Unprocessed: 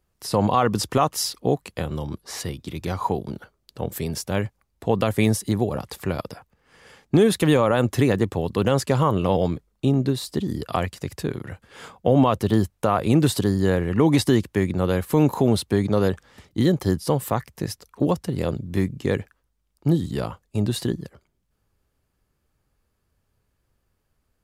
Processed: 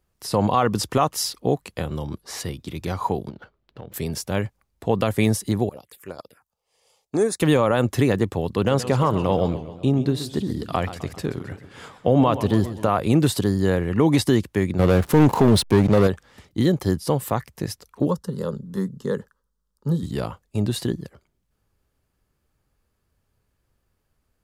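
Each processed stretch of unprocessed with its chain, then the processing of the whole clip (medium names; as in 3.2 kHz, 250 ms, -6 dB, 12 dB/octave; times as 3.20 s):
3.29–3.94 s: median filter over 9 samples + resonant high shelf 6 kHz -10.5 dB, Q 1.5 + compression 10:1, threshold -33 dBFS
5.69–7.40 s: tone controls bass -12 dB, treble +7 dB + touch-sensitive phaser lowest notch 220 Hz, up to 3.1 kHz, full sweep at -24.5 dBFS + upward expansion, over -38 dBFS
8.53–12.89 s: treble shelf 8.9 kHz -5 dB + modulated delay 132 ms, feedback 53%, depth 181 cents, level -13 dB
14.79–16.07 s: waveshaping leveller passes 2 + hysteresis with a dead band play -26 dBFS
18.08–20.03 s: treble shelf 7.9 kHz -5 dB + static phaser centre 470 Hz, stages 8
whole clip: none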